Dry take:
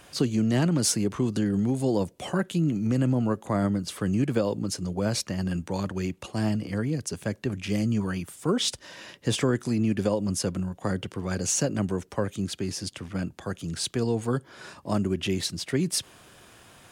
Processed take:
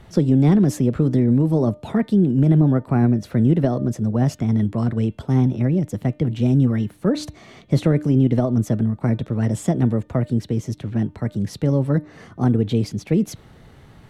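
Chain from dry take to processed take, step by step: RIAA curve playback; de-hum 250.9 Hz, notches 14; varispeed +20%

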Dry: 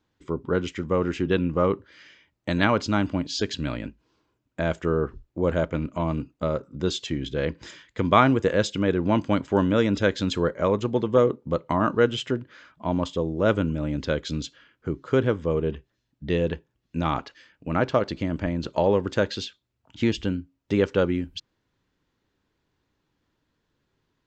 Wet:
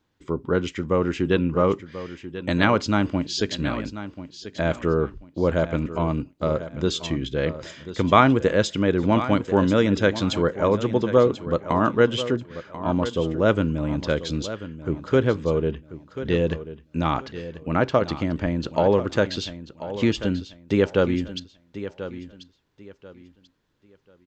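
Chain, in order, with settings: feedback echo 1.038 s, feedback 26%, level -13 dB; gain +2 dB

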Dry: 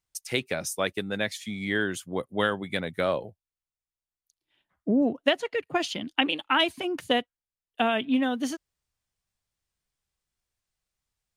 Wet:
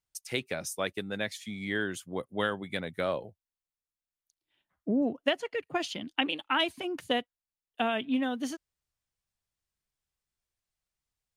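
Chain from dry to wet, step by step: 5.17–5.57 notch 3800 Hz, Q 11; gain -4.5 dB

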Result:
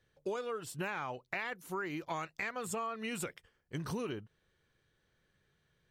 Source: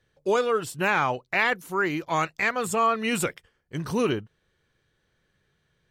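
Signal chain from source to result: compressor 10:1, threshold -30 dBFS, peak gain reduction 12.5 dB; gain -4.5 dB

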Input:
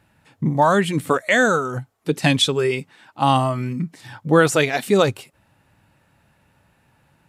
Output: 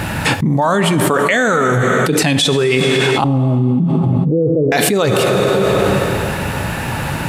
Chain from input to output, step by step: 3.24–4.72 steep low-pass 530 Hz 48 dB/oct; plate-style reverb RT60 2 s, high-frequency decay 0.9×, DRR 11.5 dB; fast leveller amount 100%; gain -1 dB

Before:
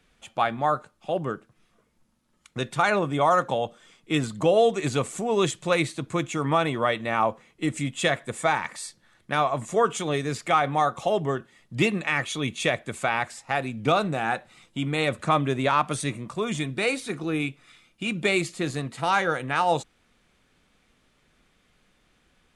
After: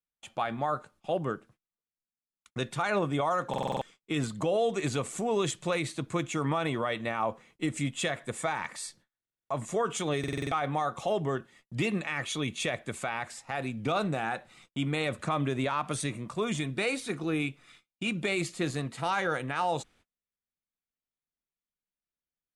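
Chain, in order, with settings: gate -53 dBFS, range -35 dB; limiter -17 dBFS, peak gain reduction 7 dB; stuck buffer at 3.49/9.18/10.19/20.2, samples 2048, times 6; gain -2.5 dB

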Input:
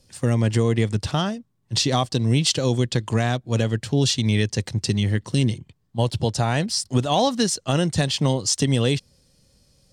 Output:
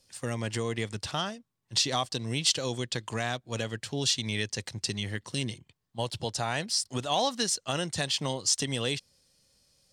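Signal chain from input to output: low shelf 480 Hz -12 dB; gain -3.5 dB

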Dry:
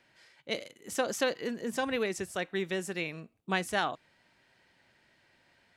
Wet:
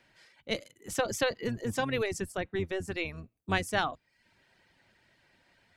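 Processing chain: octaver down 1 oct, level -2 dB; reverb removal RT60 0.51 s; 2.32–2.88 high shelf 2200 Hz -8.5 dB; gain +1 dB

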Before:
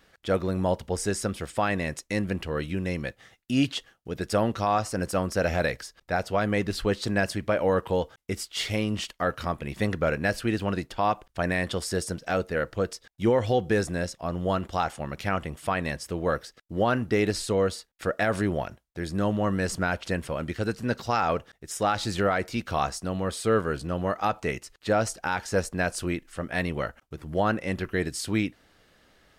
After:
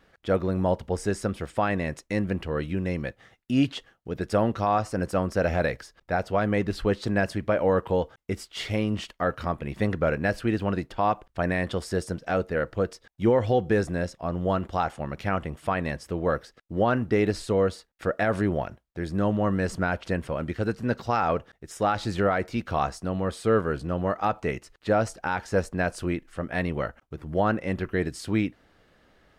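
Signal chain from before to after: high shelf 3100 Hz -10.5 dB; gain +1.5 dB

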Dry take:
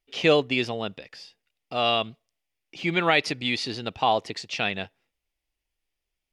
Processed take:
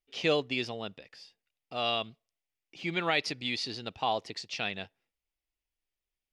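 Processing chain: dynamic EQ 4900 Hz, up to +5 dB, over -43 dBFS, Q 1.4; gain -8 dB

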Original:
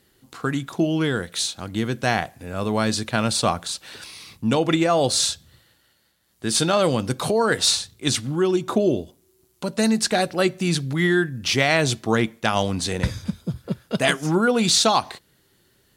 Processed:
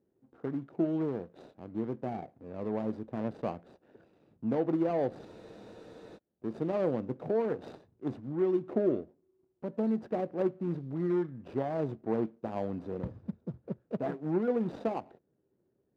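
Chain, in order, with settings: median filter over 41 samples; band-pass 440 Hz, Q 0.72; spectral freeze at 5.26, 0.90 s; gain -6.5 dB

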